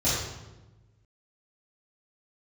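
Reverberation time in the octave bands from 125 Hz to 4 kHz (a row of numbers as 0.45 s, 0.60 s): 1.8 s, 1.5 s, 1.2 s, 1.0 s, 0.85 s, 0.75 s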